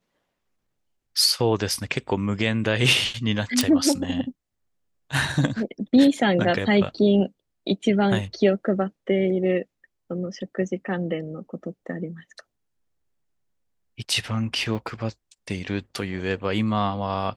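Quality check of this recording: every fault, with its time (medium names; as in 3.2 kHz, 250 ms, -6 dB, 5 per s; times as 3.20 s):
3.61 s: pop
14.75 s: dropout 2.5 ms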